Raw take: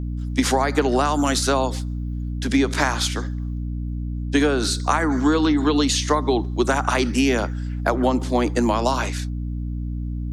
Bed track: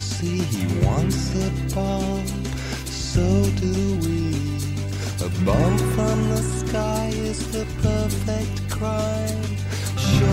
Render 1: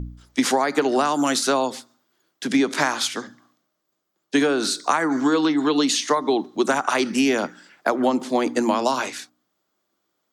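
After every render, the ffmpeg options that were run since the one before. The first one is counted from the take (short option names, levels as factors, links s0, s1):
-af "bandreject=f=60:t=h:w=4,bandreject=f=120:t=h:w=4,bandreject=f=180:t=h:w=4,bandreject=f=240:t=h:w=4,bandreject=f=300:t=h:w=4"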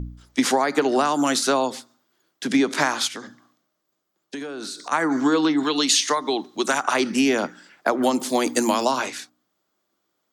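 -filter_complex "[0:a]asplit=3[s0][s1][s2];[s0]afade=t=out:st=3.07:d=0.02[s3];[s1]acompressor=threshold=0.0316:ratio=6:attack=3.2:release=140:knee=1:detection=peak,afade=t=in:st=3.07:d=0.02,afade=t=out:st=4.91:d=0.02[s4];[s2]afade=t=in:st=4.91:d=0.02[s5];[s3][s4][s5]amix=inputs=3:normalize=0,asettb=1/sr,asplit=3[s6][s7][s8];[s6]atrim=end=5.634[s9];[s7]atrim=start=5.63:end=6.83,asetpts=PTS-STARTPTS,afade=t=in:d=0.004:c=qsin,afade=t=out:st=1.196:d=0.004:c=qsin,tiltshelf=f=1300:g=-5[s10];[s8]atrim=start=6.826[s11];[s9][s10]acrossfade=d=0.004:c1=hsin:c2=qsin[s12];[s12][s11]acrossfade=d=0.004:c1=qsin:c2=hsin,asettb=1/sr,asplit=3[s13][s14][s15];[s13]atrim=end=8.024[s16];[s14]atrim=start=8.02:end=8.85,asetpts=PTS-STARTPTS,afade=t=in:d=0.004:c=qsin,afade=t=out:st=0.826:d=0.004:c=qsin,aemphasis=mode=production:type=75fm[s17];[s15]atrim=start=8.846[s18];[s16][s17]acrossfade=d=0.004:c1=hsin:c2=qsin[s19];[s19][s18]acrossfade=d=0.004:c1=qsin:c2=hsin"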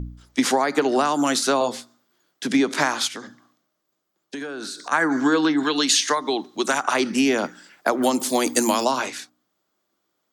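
-filter_complex "[0:a]asettb=1/sr,asplit=3[s0][s1][s2];[s0]atrim=end=1.594[s3];[s1]atrim=start=1.59:end=2.47,asetpts=PTS-STARTPTS,afade=t=in:d=0.004:c=qsin,afade=t=out:st=0.876:d=0.004:c=qsin,asplit=2[s4][s5];[s5]adelay=17,volume=0.562[s6];[s4][s6]amix=inputs=2:normalize=0,atrim=end_sample=38808[s7];[s2]atrim=start=2.466[s8];[s3][s7]acrossfade=d=0.004:c1=hsin:c2=qsin[s9];[s9][s8]acrossfade=d=0.004:c1=qsin:c2=hsin,asettb=1/sr,asplit=3[s10][s11][s12];[s10]atrim=end=4.374[s13];[s11]atrim=start=4.37:end=6.15,asetpts=PTS-STARTPTS,afade=t=in:d=0.004:c=qsin,afade=t=out:st=1.776:d=0.004:c=qsin,equalizer=f=1600:t=o:w=0.22:g=8[s14];[s12]atrim=start=6.146[s15];[s13][s14]acrossfade=d=0.004:c1=hsin:c2=qsin[s16];[s16][s15]acrossfade=d=0.004:c1=qsin:c2=hsin,asettb=1/sr,asplit=3[s17][s18][s19];[s17]atrim=end=7.444[s20];[s18]atrim=start=7.44:end=8.84,asetpts=PTS-STARTPTS,afade=t=in:d=0.004:c=qsin,afade=t=out:st=1.396:d=0.004:c=qsin,highshelf=f=6700:g=8[s21];[s19]atrim=start=8.836[s22];[s20][s21]acrossfade=d=0.004:c1=hsin:c2=qsin[s23];[s23][s22]acrossfade=d=0.004:c1=qsin:c2=hsin"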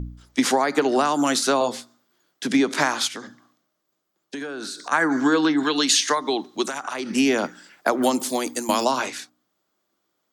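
-filter_complex "[0:a]asettb=1/sr,asplit=3[s0][s1][s2];[s0]atrim=end=6.654[s3];[s1]atrim=start=6.65:end=7.11,asetpts=PTS-STARTPTS,afade=t=in:d=0.004:c=qsin,afade=t=out:st=0.456:d=0.004:c=qsin,acompressor=threshold=0.0501:ratio=4:attack=3.2:release=140:knee=1:detection=peak[s4];[s2]atrim=start=7.106[s5];[s3][s4]acrossfade=d=0.004:c1=hsin:c2=qsin[s6];[s6][s5]acrossfade=d=0.004:c1=qsin:c2=hsin,asplit=2[s7][s8];[s7]atrim=end=8.69,asetpts=PTS-STARTPTS,afade=t=out:st=8.08:d=0.61:silence=0.266073[s9];[s8]atrim=start=8.69,asetpts=PTS-STARTPTS,afade=t=in:d=0.004:c=hsin:silence=0.266073[s10];[s9][s10]concat=n=2:v=0:a=1"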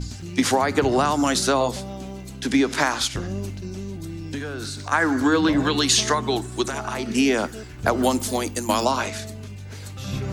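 -filter_complex "[1:a]volume=0.282[s0];[0:a][s0]amix=inputs=2:normalize=0"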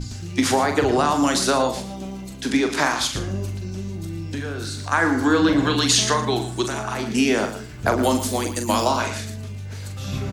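-filter_complex "[0:a]asplit=2[s0][s1];[s1]adelay=42,volume=0.422[s2];[s0][s2]amix=inputs=2:normalize=0,aecho=1:1:114:0.266"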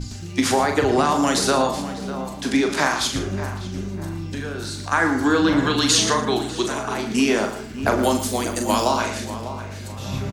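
-filter_complex "[0:a]asplit=2[s0][s1];[s1]adelay=37,volume=0.266[s2];[s0][s2]amix=inputs=2:normalize=0,asplit=2[s3][s4];[s4]adelay=599,lowpass=f=2000:p=1,volume=0.266,asplit=2[s5][s6];[s6]adelay=599,lowpass=f=2000:p=1,volume=0.4,asplit=2[s7][s8];[s8]adelay=599,lowpass=f=2000:p=1,volume=0.4,asplit=2[s9][s10];[s10]adelay=599,lowpass=f=2000:p=1,volume=0.4[s11];[s3][s5][s7][s9][s11]amix=inputs=5:normalize=0"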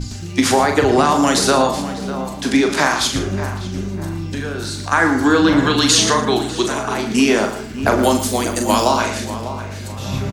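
-af "volume=1.68,alimiter=limit=0.794:level=0:latency=1"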